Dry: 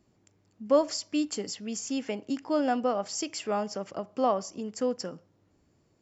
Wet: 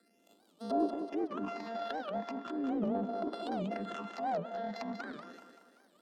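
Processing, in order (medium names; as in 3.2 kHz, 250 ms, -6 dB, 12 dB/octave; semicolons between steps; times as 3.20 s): sorted samples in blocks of 64 samples; low-pass that closes with the level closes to 560 Hz, closed at -27 dBFS; steep high-pass 200 Hz 96 dB/octave; band-stop 2.2 kHz, Q 6.2; in parallel at +1.5 dB: compression, threshold -37 dBFS, peak gain reduction 14 dB; on the sum: phase shifter stages 8, 0.39 Hz, lowest notch 310–2300 Hz; transient shaper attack -5 dB, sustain +11 dB; on a send: thinning echo 191 ms, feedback 52%, high-pass 260 Hz, level -6 dB; on the sum: warped record 78 rpm, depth 250 cents; trim -4.5 dB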